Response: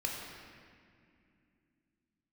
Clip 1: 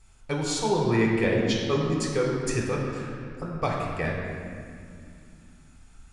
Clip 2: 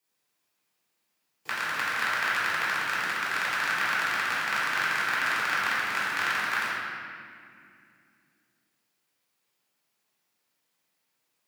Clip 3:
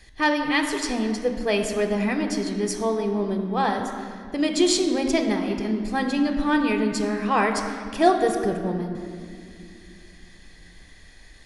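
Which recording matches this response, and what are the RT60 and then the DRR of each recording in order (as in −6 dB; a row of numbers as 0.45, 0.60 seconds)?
1; 2.4, 2.4, 2.4 seconds; −2.0, −8.0, 4.5 decibels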